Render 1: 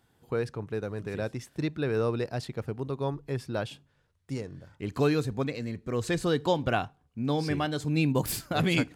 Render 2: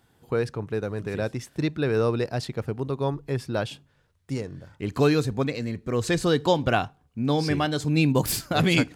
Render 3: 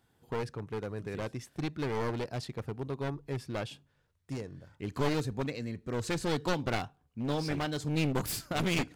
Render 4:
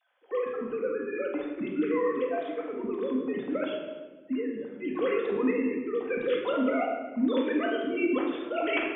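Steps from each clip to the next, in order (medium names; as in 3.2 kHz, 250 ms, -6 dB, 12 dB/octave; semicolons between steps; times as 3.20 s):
dynamic bell 5.4 kHz, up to +3 dB, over -47 dBFS, Q 1.3; trim +4.5 dB
one-sided wavefolder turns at -23 dBFS; trim -7.5 dB
formants replaced by sine waves; simulated room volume 940 m³, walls mixed, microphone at 2 m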